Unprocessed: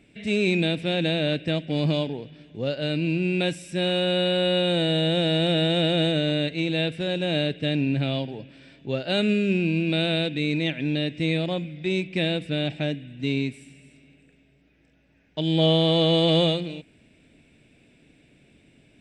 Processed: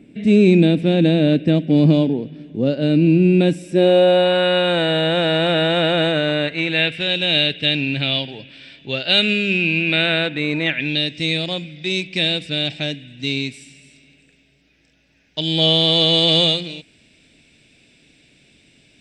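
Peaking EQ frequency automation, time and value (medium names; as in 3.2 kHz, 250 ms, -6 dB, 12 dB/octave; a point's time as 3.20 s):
peaking EQ +14.5 dB 2 oct
3.53 s 250 Hz
4.43 s 1.2 kHz
6.44 s 1.2 kHz
7.16 s 3.3 kHz
9.53 s 3.3 kHz
10.56 s 1 kHz
11.04 s 5.1 kHz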